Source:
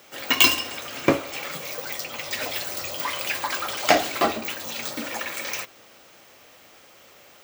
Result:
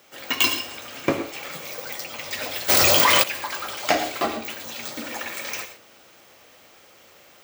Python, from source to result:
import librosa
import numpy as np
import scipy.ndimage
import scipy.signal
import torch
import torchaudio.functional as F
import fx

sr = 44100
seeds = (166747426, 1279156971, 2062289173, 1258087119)

y = fx.rider(x, sr, range_db=3, speed_s=2.0)
y = fx.rev_gated(y, sr, seeds[0], gate_ms=140, shape='rising', drr_db=9.5)
y = fx.env_flatten(y, sr, amount_pct=100, at=(2.68, 3.22), fade=0.02)
y = F.gain(torch.from_numpy(y), -4.0).numpy()